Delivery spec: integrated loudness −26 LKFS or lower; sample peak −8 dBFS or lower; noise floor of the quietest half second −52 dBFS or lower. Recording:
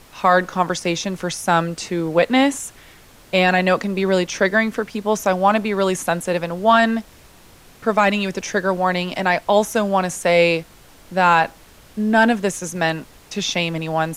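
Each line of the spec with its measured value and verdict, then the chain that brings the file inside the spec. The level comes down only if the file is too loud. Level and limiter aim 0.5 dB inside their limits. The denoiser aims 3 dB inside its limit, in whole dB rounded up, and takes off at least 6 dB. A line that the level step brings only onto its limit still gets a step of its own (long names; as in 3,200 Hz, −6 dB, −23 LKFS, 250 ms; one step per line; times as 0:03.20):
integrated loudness −19.0 LKFS: out of spec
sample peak −4.0 dBFS: out of spec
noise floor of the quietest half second −47 dBFS: out of spec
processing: level −7.5 dB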